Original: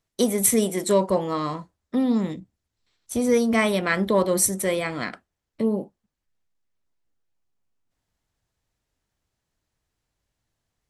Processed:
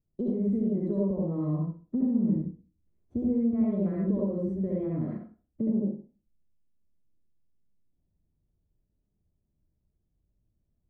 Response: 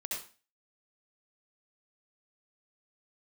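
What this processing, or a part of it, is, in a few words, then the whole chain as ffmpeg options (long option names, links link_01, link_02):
television next door: -filter_complex "[0:a]acompressor=threshold=-26dB:ratio=4,lowpass=260[link_01];[1:a]atrim=start_sample=2205[link_02];[link_01][link_02]afir=irnorm=-1:irlink=0,volume=6.5dB"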